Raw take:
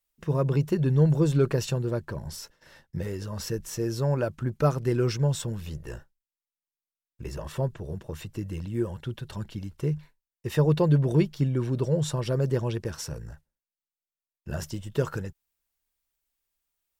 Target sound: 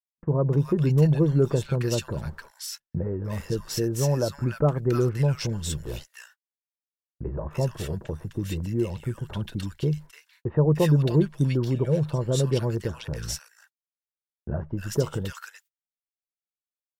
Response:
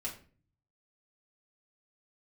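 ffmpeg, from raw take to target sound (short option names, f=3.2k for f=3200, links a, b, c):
-filter_complex "[0:a]agate=range=-41dB:threshold=-44dB:ratio=16:detection=peak,asplit=2[a][b];[b]acompressor=threshold=-32dB:ratio=6,volume=-1.5dB[c];[a][c]amix=inputs=2:normalize=0,acrossover=split=1300[d][e];[e]adelay=300[f];[d][f]amix=inputs=2:normalize=0"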